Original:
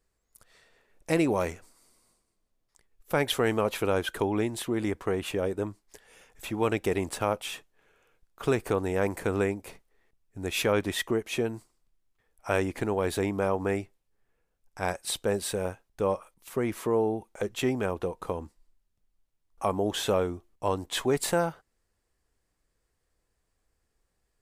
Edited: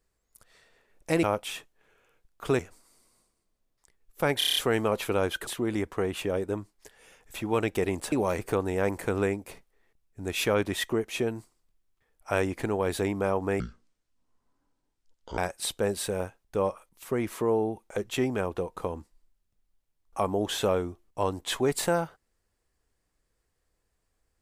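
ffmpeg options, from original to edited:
-filter_complex "[0:a]asplit=14[s0][s1][s2][s3][s4][s5][s6][s7][s8][s9][s10][s11][s12][s13];[s0]atrim=end=1.232[s14];[s1]atrim=start=7.208:end=8.572[s15];[s2]atrim=start=1.498:end=3.322[s16];[s3]atrim=start=3.288:end=3.322[s17];[s4]atrim=start=3.288:end=3.322[s18];[s5]atrim=start=3.288:end=3.322[s19];[s6]atrim=start=3.288:end=3.322[s20];[s7]atrim=start=3.288:end=3.322[s21];[s8]atrim=start=3.288:end=4.202[s22];[s9]atrim=start=4.558:end=7.212[s23];[s10]atrim=start=1.228:end=1.502[s24];[s11]atrim=start=8.568:end=13.784[s25];[s12]atrim=start=13.78:end=14.83,asetpts=PTS-STARTPTS,asetrate=26019,aresample=44100,atrim=end_sample=78483,asetpts=PTS-STARTPTS[s26];[s13]atrim=start=14.826[s27];[s14][s15]acrossfade=d=0.004:c1=hsin:c2=hsin[s28];[s28][s16]acrossfade=d=0.004:c1=hsin:c2=hsin[s29];[s29][s17]acrossfade=d=0.004:c1=hsin:c2=hsin[s30];[s30][s18]acrossfade=d=0.004:c1=hsin:c2=hsin[s31];[s31][s19]acrossfade=d=0.004:c1=hsin:c2=hsin[s32];[s32][s20]acrossfade=d=0.004:c1=hsin:c2=hsin[s33];[s33][s21]acrossfade=d=0.004:c1=hsin:c2=hsin[s34];[s34][s22]acrossfade=d=0.004:c1=hsin:c2=hsin[s35];[s35][s23]acrossfade=d=0.004:c1=hsin:c2=hsin[s36];[s36][s24]acrossfade=d=0.004:c1=hsin:c2=hsin[s37];[s37][s25]acrossfade=d=0.004:c1=hsin:c2=hsin[s38];[s38][s26]acrossfade=d=0.004:c1=hsin:c2=hsin[s39];[s39][s27]acrossfade=d=0.004:c1=hsin:c2=hsin"

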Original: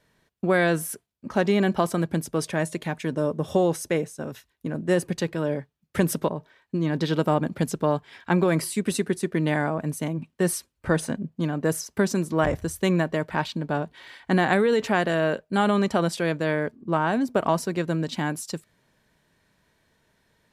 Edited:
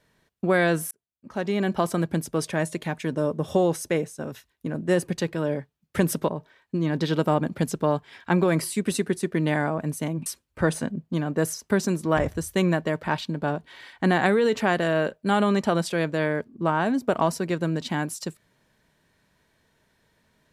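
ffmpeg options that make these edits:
-filter_complex "[0:a]asplit=3[s0][s1][s2];[s0]atrim=end=0.91,asetpts=PTS-STARTPTS,afade=t=out:st=0.906:d=0.004:c=hsin[s3];[s1]atrim=start=0.91:end=10.262,asetpts=PTS-STARTPTS,afade=t=in:d=1.01[s4];[s2]atrim=start=10.528[s5];[s3][s4]concat=n=2:v=0:a=1[s6];[s6][s5]acrossfade=d=0.004:c1=hsin:c2=hsin"

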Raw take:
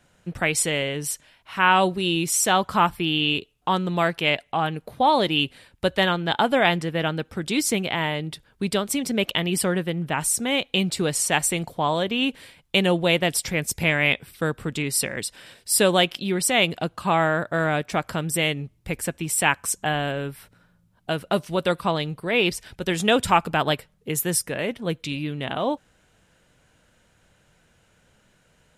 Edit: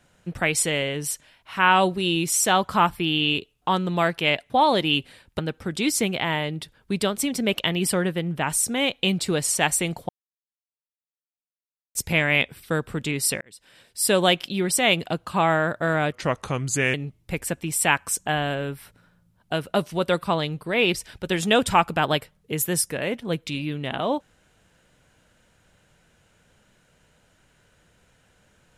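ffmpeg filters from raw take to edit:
-filter_complex "[0:a]asplit=8[s0][s1][s2][s3][s4][s5][s6][s7];[s0]atrim=end=4.502[s8];[s1]atrim=start=4.958:end=5.852[s9];[s2]atrim=start=7.098:end=11.8,asetpts=PTS-STARTPTS,afade=t=out:st=4.698:d=0.004:c=hsin[s10];[s3]atrim=start=11.8:end=13.66,asetpts=PTS-STARTPTS,volume=0[s11];[s4]atrim=start=13.66:end=15.12,asetpts=PTS-STARTPTS,afade=t=in:d=0.004:c=hsin,afade=t=out:st=1.456:d=0.004:c=hsin[s12];[s5]atrim=start=15.12:end=17.834,asetpts=PTS-STARTPTS,afade=t=in:d=0.85[s13];[s6]atrim=start=17.83:end=18.51,asetpts=PTS-STARTPTS,asetrate=36603,aresample=44100,atrim=end_sample=36130,asetpts=PTS-STARTPTS[s14];[s7]atrim=start=18.506[s15];[s8][s9]acrossfade=d=0.004:c1=hsin:c2=hsin[s16];[s10][s11][s12][s13]concat=n=4:v=0:a=1[s17];[s16][s17]acrossfade=d=0.004:c1=hsin:c2=hsin[s18];[s18][s14]acrossfade=d=0.004:c1=hsin:c2=hsin[s19];[s19][s15]acrossfade=d=0.004:c1=hsin:c2=hsin"

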